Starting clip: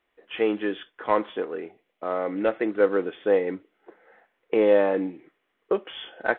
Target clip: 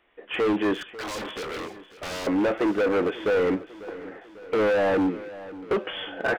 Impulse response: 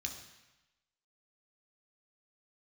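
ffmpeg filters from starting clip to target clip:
-filter_complex "[0:a]aresample=8000,aresample=44100,asplit=2[link_01][link_02];[link_02]alimiter=limit=-17dB:level=0:latency=1:release=17,volume=2.5dB[link_03];[link_01][link_03]amix=inputs=2:normalize=0,volume=22dB,asoftclip=hard,volume=-22dB,acrossover=split=2700[link_04][link_05];[link_05]acompressor=threshold=-46dB:ratio=4:attack=1:release=60[link_06];[link_04][link_06]amix=inputs=2:normalize=0,asettb=1/sr,asplit=3[link_07][link_08][link_09];[link_07]atrim=end=0.744[link_10];[link_08]atrim=start=0.74:end=2.27,asetpts=PTS-STARTPTS,afade=type=in:duration=0.004:curve=qsin,afade=type=out:start_time=1.526:duration=0.004:curve=qsin,aeval=exprs='0.0266*(abs(mod(val(0)/0.0266+3,4)-2)-1)':channel_layout=same[link_11];[link_09]atrim=start=2.266[link_12];[link_10][link_11]acrossfade=duration=0.004:curve1=hsin:curve2=qsin[link_13];[link_13][link_12]acrossfade=duration=0.004:curve1=qsin:curve2=hsin,asplit=2[link_14][link_15];[link_15]aecho=0:1:546|1092|1638|2184|2730:0.141|0.0791|0.0443|0.0248|0.0139[link_16];[link_14][link_16]amix=inputs=2:normalize=0,volume=2dB"

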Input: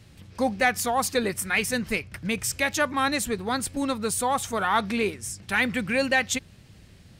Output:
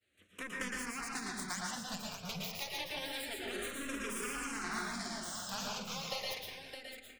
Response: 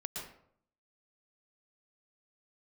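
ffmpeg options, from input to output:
-filter_complex "[0:a]highpass=frequency=700:poles=1,agate=range=-33dB:threshold=-48dB:ratio=3:detection=peak,highshelf=frequency=9500:gain=-9.5,acompressor=threshold=-36dB:ratio=5,aeval=exprs='0.075*(cos(1*acos(clip(val(0)/0.075,-1,1)))-cos(1*PI/2))+0.0266*(cos(7*acos(clip(val(0)/0.075,-1,1)))-cos(7*PI/2))':channel_layout=same,asettb=1/sr,asplit=3[link_01][link_02][link_03];[link_01]atrim=end=3.344[link_04];[link_02]atrim=start=3.34:end=5.91,asetpts=PTS-STARTPTS,afade=type=in:duration=0.004:curve=qsin,afade=type=out:start_time=2.566:duration=0.004:curve=qsin,asplit=2[link_05][link_06];[link_06]adelay=47,volume=-6dB[link_07];[link_05][link_07]amix=inputs=2:normalize=0,atrim=end_sample=113337[link_08];[link_03]atrim=start=5.906[link_09];[link_04][link_08]acrossfade=duration=0.004:curve1=hsin:curve2=qsin[link_10];[link_10][link_09]acrossfade=duration=0.004:curve1=qsin:curve2=hsin,aecho=1:1:614:0.376[link_11];[1:a]atrim=start_sample=2205[link_12];[link_11][link_12]afir=irnorm=-1:irlink=0,asplit=2[link_13][link_14];[link_14]afreqshift=-0.28[link_15];[link_13][link_15]amix=inputs=2:normalize=1,volume=2dB"

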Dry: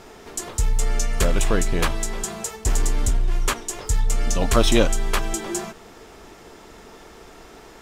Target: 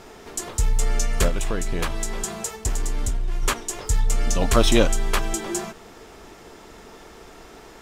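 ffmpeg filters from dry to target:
ffmpeg -i in.wav -filter_complex "[0:a]asettb=1/sr,asplit=3[link_01][link_02][link_03];[link_01]atrim=end=1.284[link_04];[link_02]atrim=start=1.28:end=3.43,asetpts=PTS-STARTPTS,afade=type=in:duration=0.004:curve=qsin,afade=type=out:start_time=2.146:duration=0.004:curve=qsin,acompressor=threshold=-20dB:ratio=6[link_05];[link_03]atrim=start=3.426[link_06];[link_04][link_05]acrossfade=duration=0.004:curve1=hsin:curve2=qsin[link_07];[link_07][link_06]acrossfade=duration=0.004:curve1=qsin:curve2=hsin" out.wav

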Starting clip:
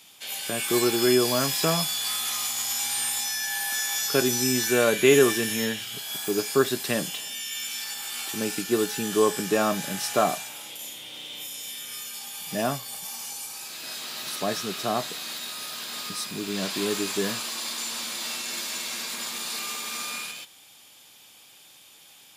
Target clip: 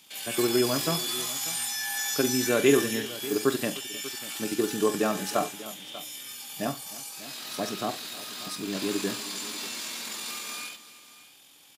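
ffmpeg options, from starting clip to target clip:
ffmpeg -i in.wav -af "atempo=1.9,equalizer=frequency=290:width_type=o:width=0.3:gain=6.5,aecho=1:1:42|73|306|591:0.224|0.119|0.106|0.141,volume=-3dB" out.wav

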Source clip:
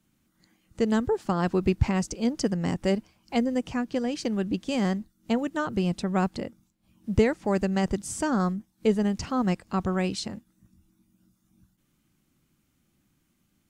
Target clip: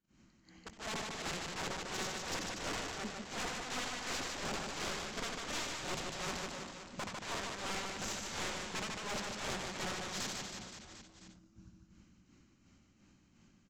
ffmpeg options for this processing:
ffmpeg -i in.wav -filter_complex "[0:a]afftfilt=real='re':imag='-im':win_size=8192:overlap=0.75,equalizer=frequency=140:width_type=o:width=0.29:gain=-4.5,bandreject=frequency=3500:width=9.3,acompressor=threshold=-41dB:ratio=5,aresample=16000,aeval=exprs='(mod(158*val(0)+1,2)-1)/158':channel_layout=same,aresample=44100,tremolo=f=2.8:d=0.95,aecho=1:1:150|322.5|520.9|749|1011:0.631|0.398|0.251|0.158|0.1,asplit=2[link_01][link_02];[link_02]acrusher=bits=3:mix=0:aa=0.000001,volume=-5.5dB[link_03];[link_01][link_03]amix=inputs=2:normalize=0,aeval=exprs='(tanh(158*val(0)+0.5)-tanh(0.5))/158':channel_layout=same,volume=13dB" out.wav

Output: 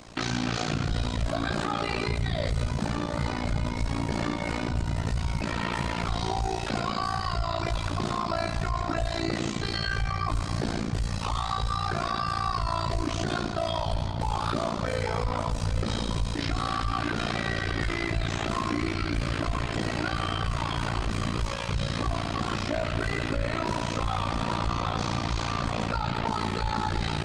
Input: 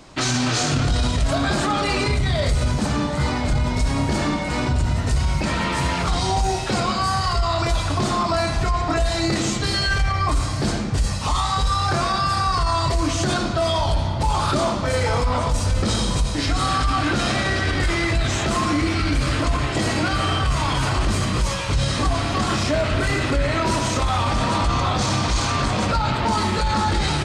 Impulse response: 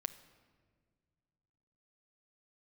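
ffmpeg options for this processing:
-filter_complex "[0:a]acrossover=split=4700[link_01][link_02];[link_02]acompressor=threshold=-40dB:ratio=4:attack=1:release=60[link_03];[link_01][link_03]amix=inputs=2:normalize=0,alimiter=limit=-18.5dB:level=0:latency=1:release=252,tremolo=f=57:d=0.919,volume=2dB"

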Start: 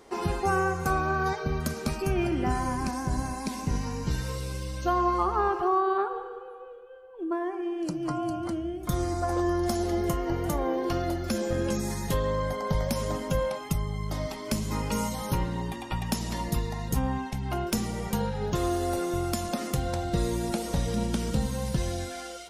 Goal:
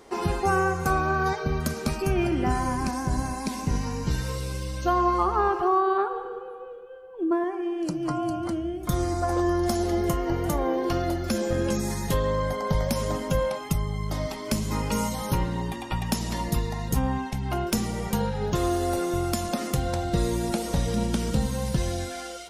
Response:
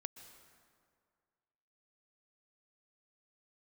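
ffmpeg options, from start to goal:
-filter_complex "[0:a]asettb=1/sr,asplit=3[link_01][link_02][link_03];[link_01]atrim=end=6.254[link_04];[link_02]atrim=start=6.25:end=7.44,asetpts=PTS-STARTPTS,afade=type=in:duration=0.004:curve=qsin,afade=type=out:start_time=1.186:duration=0.004:curve=qsin,equalizer=frequency=170:width_type=o:width=1.8:gain=8.5[link_05];[link_03]atrim=start=7.436[link_06];[link_04][link_05]acrossfade=duration=0.004:curve1=hsin:curve2=qsin[link_07];[link_07][link_06]acrossfade=duration=0.004:curve1=qsin:curve2=hsin,volume=2.5dB"

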